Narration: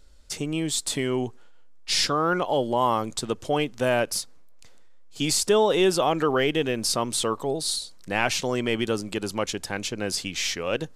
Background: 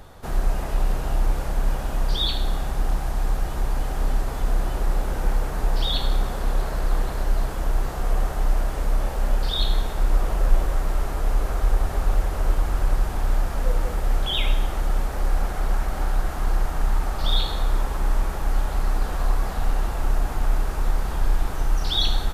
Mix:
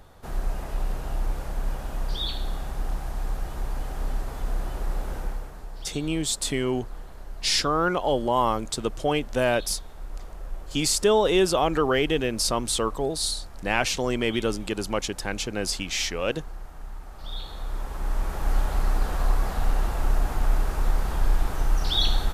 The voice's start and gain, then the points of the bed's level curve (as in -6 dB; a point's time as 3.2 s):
5.55 s, 0.0 dB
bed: 5.16 s -6 dB
5.67 s -17 dB
17.05 s -17 dB
18.52 s -1 dB